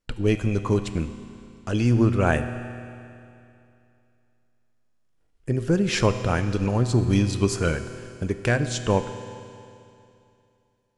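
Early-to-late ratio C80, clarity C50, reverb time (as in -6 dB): 10.5 dB, 10.0 dB, 2.7 s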